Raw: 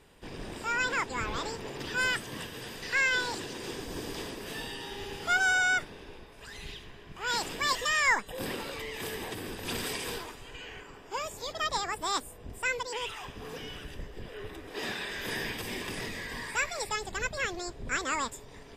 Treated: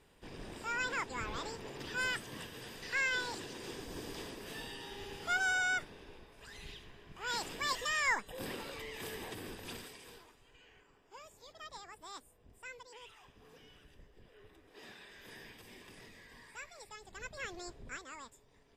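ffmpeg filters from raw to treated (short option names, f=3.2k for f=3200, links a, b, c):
-af "volume=3.5dB,afade=t=out:st=9.49:d=0.42:silence=0.266073,afade=t=in:st=16.99:d=0.71:silence=0.316228,afade=t=out:st=17.7:d=0.34:silence=0.316228"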